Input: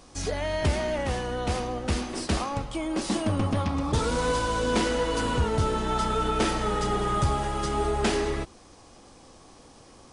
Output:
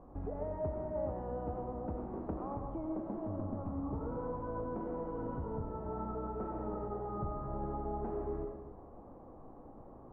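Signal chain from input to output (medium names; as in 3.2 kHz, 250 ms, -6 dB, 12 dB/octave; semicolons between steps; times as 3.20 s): low-pass 1 kHz 24 dB/octave; compression 6:1, threshold -36 dBFS, peak gain reduction 15 dB; reverberation RT60 1.1 s, pre-delay 55 ms, DRR 2.5 dB; trim -2 dB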